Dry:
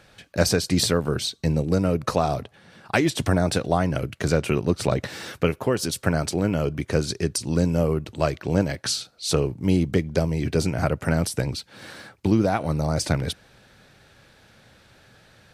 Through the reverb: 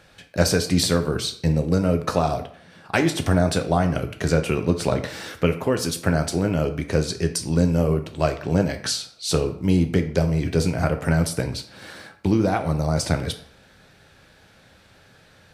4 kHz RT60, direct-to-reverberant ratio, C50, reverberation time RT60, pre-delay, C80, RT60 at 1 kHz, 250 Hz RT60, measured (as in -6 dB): 0.45 s, 6.5 dB, 11.5 dB, 0.60 s, 8 ms, 15.0 dB, 0.55 s, 0.50 s